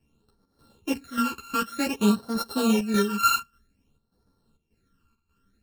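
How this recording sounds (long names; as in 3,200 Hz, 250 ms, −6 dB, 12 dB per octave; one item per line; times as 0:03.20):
a buzz of ramps at a fixed pitch in blocks of 32 samples
phaser sweep stages 12, 0.53 Hz, lowest notch 600–2,600 Hz
chopped level 1.7 Hz, depth 65%, duty 75%
a shimmering, thickened sound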